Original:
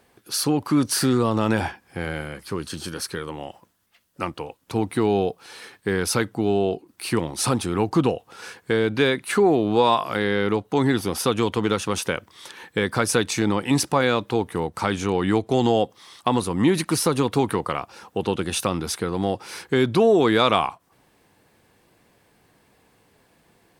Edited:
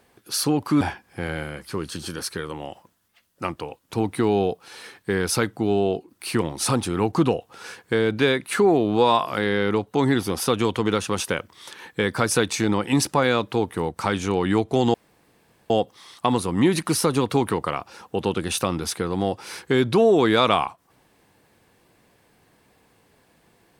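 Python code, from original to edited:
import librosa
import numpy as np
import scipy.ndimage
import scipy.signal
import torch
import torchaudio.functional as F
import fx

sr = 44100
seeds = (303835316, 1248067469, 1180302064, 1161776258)

y = fx.edit(x, sr, fx.cut(start_s=0.81, length_s=0.78),
    fx.insert_room_tone(at_s=15.72, length_s=0.76), tone=tone)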